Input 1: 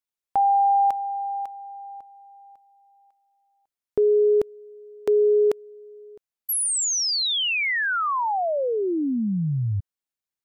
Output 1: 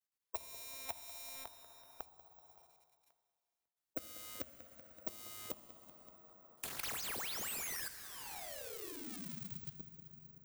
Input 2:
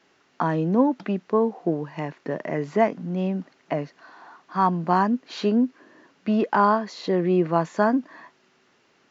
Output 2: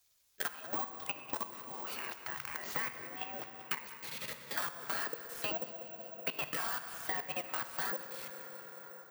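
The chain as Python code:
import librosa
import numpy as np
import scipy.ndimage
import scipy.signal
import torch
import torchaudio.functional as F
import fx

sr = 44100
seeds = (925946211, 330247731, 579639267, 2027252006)

p1 = fx.dead_time(x, sr, dead_ms=0.056)
p2 = fx.spec_gate(p1, sr, threshold_db=-20, keep='weak')
p3 = fx.peak_eq(p2, sr, hz=67.0, db=5.5, octaves=0.67)
p4 = fx.level_steps(p3, sr, step_db=21)
p5 = np.clip(p4, -10.0 ** (-39.0 / 20.0), 10.0 ** (-39.0 / 20.0))
p6 = fx.gate_hold(p5, sr, open_db=-54.0, close_db=-60.0, hold_ms=21.0, range_db=-27, attack_ms=1.6, release_ms=56.0)
p7 = p6 + fx.echo_feedback(p6, sr, ms=190, feedback_pct=39, wet_db=-19.0, dry=0)
p8 = fx.rev_fdn(p7, sr, rt60_s=1.7, lf_ratio=0.85, hf_ratio=0.7, size_ms=42.0, drr_db=9.0)
p9 = (np.kron(p8[::2], np.eye(2)[0]) * 2)[:len(p8)]
p10 = fx.band_squash(p9, sr, depth_pct=100)
y = p10 * 10.0 ** (5.5 / 20.0)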